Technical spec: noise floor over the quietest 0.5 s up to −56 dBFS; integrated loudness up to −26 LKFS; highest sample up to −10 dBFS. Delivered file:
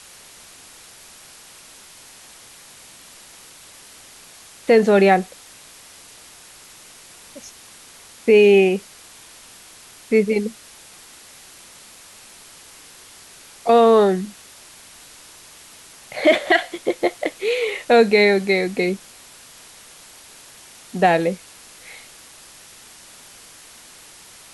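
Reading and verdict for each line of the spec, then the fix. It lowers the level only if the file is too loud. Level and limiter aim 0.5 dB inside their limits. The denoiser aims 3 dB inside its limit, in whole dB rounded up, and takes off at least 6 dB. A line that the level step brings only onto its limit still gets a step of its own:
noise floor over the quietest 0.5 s −45 dBFS: out of spec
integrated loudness −17.5 LKFS: out of spec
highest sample −4.5 dBFS: out of spec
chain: broadband denoise 6 dB, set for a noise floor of −45 dBFS
level −9 dB

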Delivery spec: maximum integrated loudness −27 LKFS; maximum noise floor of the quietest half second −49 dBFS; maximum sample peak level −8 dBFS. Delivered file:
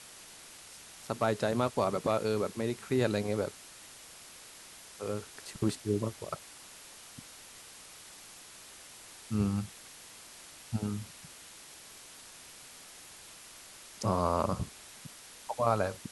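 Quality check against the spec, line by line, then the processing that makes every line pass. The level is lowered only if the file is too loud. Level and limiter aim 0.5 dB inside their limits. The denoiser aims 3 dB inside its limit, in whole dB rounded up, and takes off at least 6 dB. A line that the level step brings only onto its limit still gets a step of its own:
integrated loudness −33.0 LKFS: in spec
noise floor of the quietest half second −51 dBFS: in spec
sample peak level −13.5 dBFS: in spec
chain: no processing needed

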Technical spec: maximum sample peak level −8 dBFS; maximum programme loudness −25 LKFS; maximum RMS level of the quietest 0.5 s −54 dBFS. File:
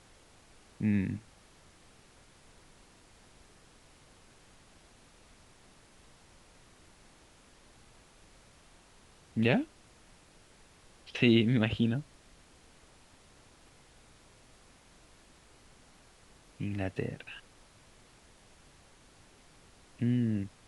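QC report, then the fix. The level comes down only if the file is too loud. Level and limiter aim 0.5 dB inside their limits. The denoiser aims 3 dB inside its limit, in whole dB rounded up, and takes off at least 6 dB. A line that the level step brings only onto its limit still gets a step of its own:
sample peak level −10.5 dBFS: in spec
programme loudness −31.0 LKFS: in spec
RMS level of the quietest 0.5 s −60 dBFS: in spec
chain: no processing needed

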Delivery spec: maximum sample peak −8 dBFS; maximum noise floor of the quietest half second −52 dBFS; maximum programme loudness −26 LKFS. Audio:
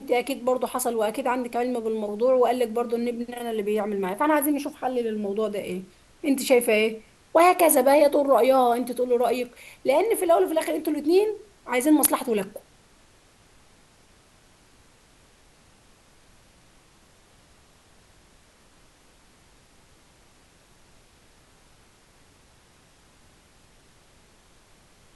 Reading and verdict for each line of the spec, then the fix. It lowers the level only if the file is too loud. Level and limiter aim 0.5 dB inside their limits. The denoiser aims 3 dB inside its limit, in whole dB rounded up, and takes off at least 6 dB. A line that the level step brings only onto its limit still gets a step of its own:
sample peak −5.5 dBFS: out of spec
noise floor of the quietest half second −57 dBFS: in spec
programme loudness −23.0 LKFS: out of spec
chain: level −3.5 dB

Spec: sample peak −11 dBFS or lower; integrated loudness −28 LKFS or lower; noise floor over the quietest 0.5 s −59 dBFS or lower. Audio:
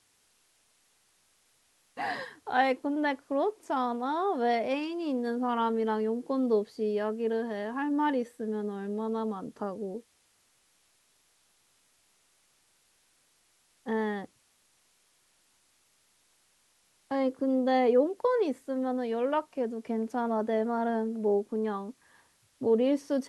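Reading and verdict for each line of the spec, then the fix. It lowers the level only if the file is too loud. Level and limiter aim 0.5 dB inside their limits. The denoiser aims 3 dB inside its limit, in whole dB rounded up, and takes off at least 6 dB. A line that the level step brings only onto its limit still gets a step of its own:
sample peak −14.5 dBFS: in spec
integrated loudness −30.0 LKFS: in spec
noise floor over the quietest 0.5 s −69 dBFS: in spec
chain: no processing needed

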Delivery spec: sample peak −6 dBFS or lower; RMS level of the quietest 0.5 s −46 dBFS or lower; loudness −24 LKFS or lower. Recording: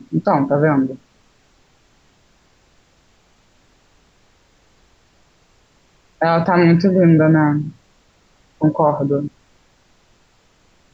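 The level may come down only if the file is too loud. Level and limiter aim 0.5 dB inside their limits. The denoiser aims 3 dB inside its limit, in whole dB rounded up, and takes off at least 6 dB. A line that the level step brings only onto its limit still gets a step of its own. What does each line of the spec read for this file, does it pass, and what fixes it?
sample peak −4.0 dBFS: out of spec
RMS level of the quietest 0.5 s −56 dBFS: in spec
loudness −15.5 LKFS: out of spec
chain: level −9 dB

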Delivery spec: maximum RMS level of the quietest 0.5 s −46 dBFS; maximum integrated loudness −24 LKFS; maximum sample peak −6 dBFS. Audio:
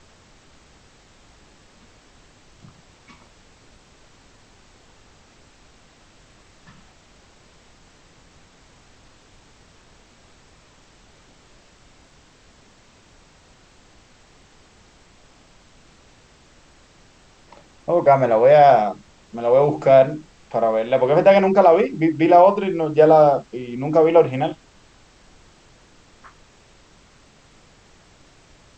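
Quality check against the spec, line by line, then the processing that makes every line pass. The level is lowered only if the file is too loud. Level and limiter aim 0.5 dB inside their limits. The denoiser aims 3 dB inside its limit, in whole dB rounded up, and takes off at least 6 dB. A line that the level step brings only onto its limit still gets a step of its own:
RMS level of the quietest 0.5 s −52 dBFS: in spec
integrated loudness −16.0 LKFS: out of spec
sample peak −2.5 dBFS: out of spec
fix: level −8.5 dB

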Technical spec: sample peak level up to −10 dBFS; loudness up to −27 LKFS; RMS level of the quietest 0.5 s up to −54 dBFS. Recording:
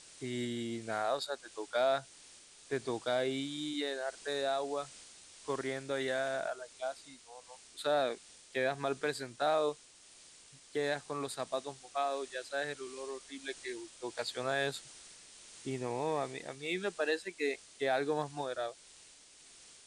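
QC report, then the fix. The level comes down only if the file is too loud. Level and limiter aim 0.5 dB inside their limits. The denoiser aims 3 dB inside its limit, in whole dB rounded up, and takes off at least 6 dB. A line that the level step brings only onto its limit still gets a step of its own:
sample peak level −19.5 dBFS: in spec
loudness −36.5 LKFS: in spec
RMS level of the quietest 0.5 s −58 dBFS: in spec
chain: no processing needed

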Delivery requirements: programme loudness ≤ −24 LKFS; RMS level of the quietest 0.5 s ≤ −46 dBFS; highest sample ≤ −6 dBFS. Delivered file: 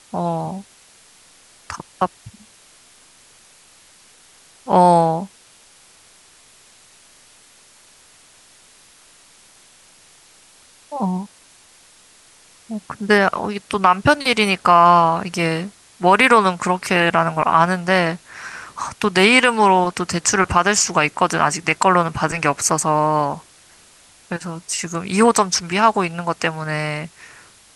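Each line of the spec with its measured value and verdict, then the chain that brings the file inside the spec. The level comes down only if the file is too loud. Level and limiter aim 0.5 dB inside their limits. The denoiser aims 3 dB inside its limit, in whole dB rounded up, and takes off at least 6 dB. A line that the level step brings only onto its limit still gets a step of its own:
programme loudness −17.0 LKFS: out of spec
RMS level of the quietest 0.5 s −50 dBFS: in spec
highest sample −2.0 dBFS: out of spec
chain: level −7.5 dB

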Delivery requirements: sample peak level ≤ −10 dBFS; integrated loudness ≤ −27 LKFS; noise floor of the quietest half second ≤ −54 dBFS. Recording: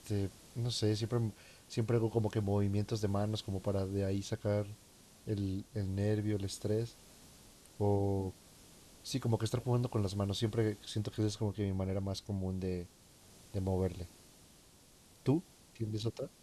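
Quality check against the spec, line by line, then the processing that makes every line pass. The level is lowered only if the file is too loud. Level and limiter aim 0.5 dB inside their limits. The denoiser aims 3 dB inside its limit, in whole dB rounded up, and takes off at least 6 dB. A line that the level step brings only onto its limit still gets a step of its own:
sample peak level −18.5 dBFS: in spec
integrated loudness −36.0 LKFS: in spec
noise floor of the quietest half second −62 dBFS: in spec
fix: no processing needed

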